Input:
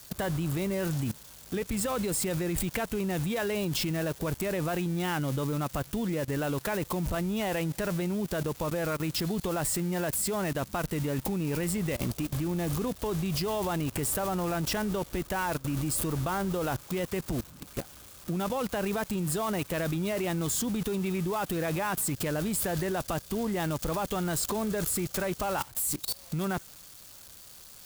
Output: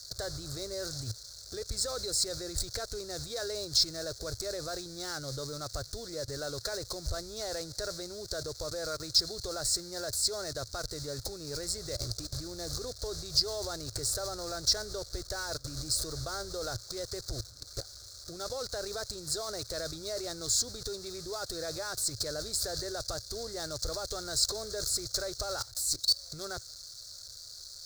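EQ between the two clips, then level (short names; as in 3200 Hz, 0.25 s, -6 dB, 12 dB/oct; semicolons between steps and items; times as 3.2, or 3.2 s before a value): EQ curve 110 Hz 0 dB, 190 Hz -25 dB, 410 Hz -6 dB, 620 Hz -4 dB, 950 Hz -17 dB, 1400 Hz -3 dB, 2900 Hz -24 dB, 4200 Hz +13 dB, 6200 Hz +7 dB, 12000 Hz -10 dB; 0.0 dB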